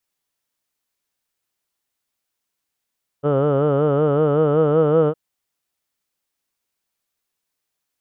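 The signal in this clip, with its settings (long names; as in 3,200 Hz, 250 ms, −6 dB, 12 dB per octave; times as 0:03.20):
vowel from formants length 1.91 s, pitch 140 Hz, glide +2 semitones, F1 500 Hz, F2 1,300 Hz, F3 3,000 Hz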